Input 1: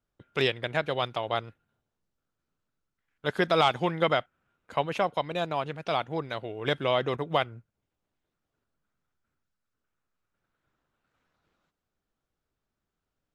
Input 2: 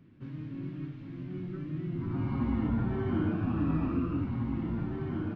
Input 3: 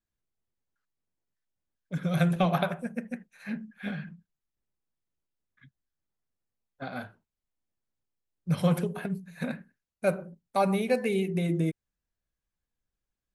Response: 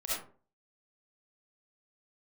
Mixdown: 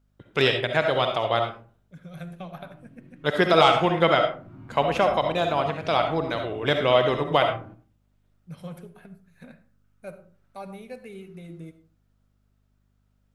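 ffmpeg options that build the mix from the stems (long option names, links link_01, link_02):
-filter_complex "[0:a]volume=2.5dB,asplit=2[link_01][link_02];[link_02]volume=-6dB[link_03];[1:a]adelay=2400,volume=-14dB,asplit=2[link_04][link_05];[link_05]volume=-13dB[link_06];[2:a]aeval=exprs='val(0)+0.00282*(sin(2*PI*50*n/s)+sin(2*PI*2*50*n/s)/2+sin(2*PI*3*50*n/s)/3+sin(2*PI*4*50*n/s)/4+sin(2*PI*5*50*n/s)/5)':channel_layout=same,volume=-14.5dB,asplit=2[link_07][link_08];[link_08]volume=-16.5dB[link_09];[3:a]atrim=start_sample=2205[link_10];[link_03][link_06][link_09]amix=inputs=3:normalize=0[link_11];[link_11][link_10]afir=irnorm=-1:irlink=0[link_12];[link_01][link_04][link_07][link_12]amix=inputs=4:normalize=0"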